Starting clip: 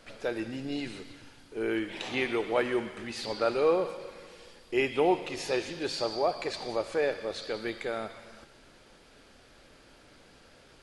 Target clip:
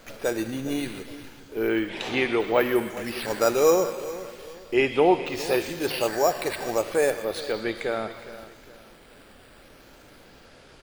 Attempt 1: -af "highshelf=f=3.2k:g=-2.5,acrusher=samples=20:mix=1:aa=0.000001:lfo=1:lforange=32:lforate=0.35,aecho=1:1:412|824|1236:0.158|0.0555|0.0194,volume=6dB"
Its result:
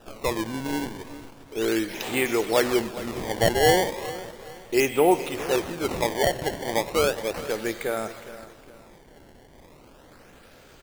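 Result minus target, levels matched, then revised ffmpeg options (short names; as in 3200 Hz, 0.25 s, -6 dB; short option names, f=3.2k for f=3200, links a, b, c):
decimation with a swept rate: distortion +13 dB
-af "highshelf=f=3.2k:g=-2.5,acrusher=samples=4:mix=1:aa=0.000001:lfo=1:lforange=6.4:lforate=0.35,aecho=1:1:412|824|1236:0.158|0.0555|0.0194,volume=6dB"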